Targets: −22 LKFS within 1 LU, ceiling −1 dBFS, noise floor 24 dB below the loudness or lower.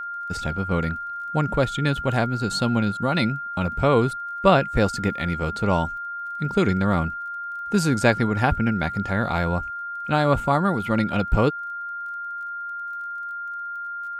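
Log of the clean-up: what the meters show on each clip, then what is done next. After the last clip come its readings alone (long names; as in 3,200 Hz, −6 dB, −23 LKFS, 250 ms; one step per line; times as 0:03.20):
crackle rate 24 per second; interfering tone 1,400 Hz; level of the tone −29 dBFS; integrated loudness −23.5 LKFS; sample peak −3.0 dBFS; target loudness −22.0 LKFS
→ click removal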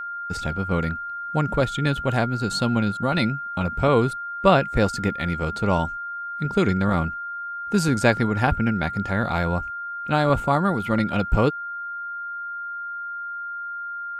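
crackle rate 0.35 per second; interfering tone 1,400 Hz; level of the tone −29 dBFS
→ notch filter 1,400 Hz, Q 30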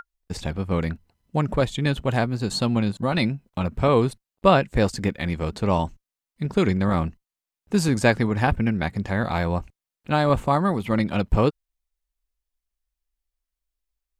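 interfering tone none found; integrated loudness −23.5 LKFS; sample peak −3.5 dBFS; target loudness −22.0 LKFS
→ level +1.5 dB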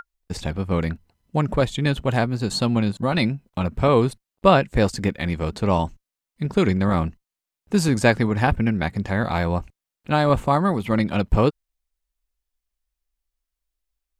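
integrated loudness −22.0 LKFS; sample peak −2.0 dBFS; background noise floor −88 dBFS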